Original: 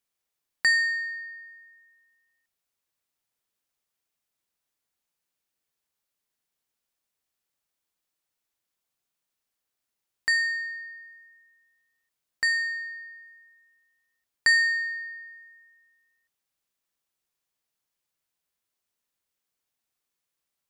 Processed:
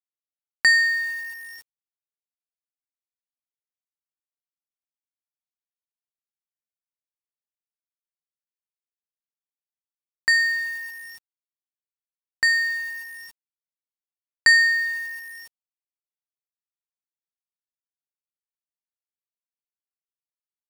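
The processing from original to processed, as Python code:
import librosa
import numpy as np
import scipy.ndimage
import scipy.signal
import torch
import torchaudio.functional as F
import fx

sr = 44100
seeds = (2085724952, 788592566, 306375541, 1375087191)

y = fx.quant_dither(x, sr, seeds[0], bits=8, dither='none')
y = y * librosa.db_to_amplitude(5.0)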